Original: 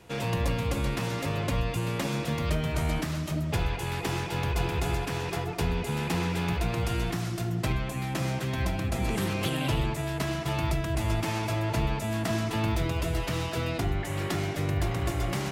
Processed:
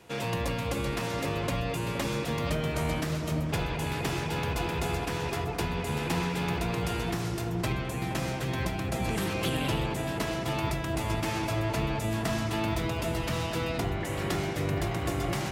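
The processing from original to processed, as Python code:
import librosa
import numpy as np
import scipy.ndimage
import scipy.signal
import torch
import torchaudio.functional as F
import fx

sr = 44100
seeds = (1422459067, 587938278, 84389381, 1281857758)

p1 = fx.low_shelf(x, sr, hz=110.0, db=-9.0)
y = p1 + fx.echo_filtered(p1, sr, ms=470, feedback_pct=80, hz=1200.0, wet_db=-8, dry=0)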